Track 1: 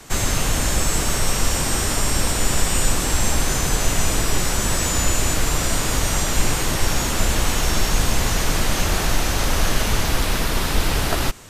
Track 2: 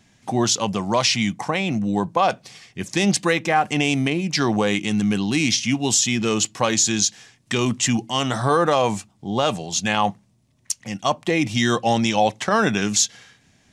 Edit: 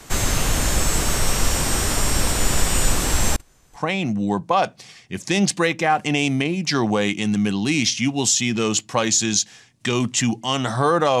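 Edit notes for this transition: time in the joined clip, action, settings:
track 1
3.36–3.84 gate -11 dBFS, range -36 dB
3.79 switch to track 2 from 1.45 s, crossfade 0.10 s

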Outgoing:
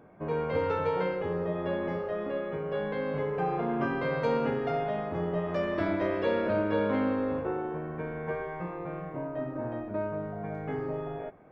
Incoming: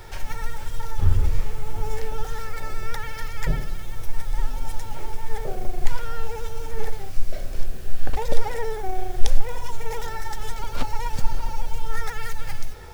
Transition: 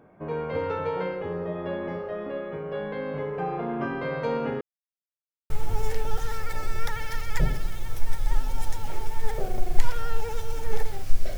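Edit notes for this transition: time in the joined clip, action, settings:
outgoing
4.61–5.5 mute
5.5 switch to incoming from 1.57 s

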